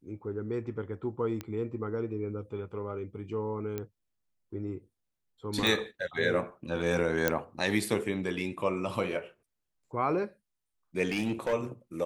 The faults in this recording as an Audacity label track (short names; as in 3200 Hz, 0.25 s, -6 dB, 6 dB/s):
1.410000	1.410000	pop -22 dBFS
3.780000	3.780000	pop -21 dBFS
5.670000	5.670000	pop
7.280000	7.280000	pop -10 dBFS
11.100000	11.540000	clipped -25.5 dBFS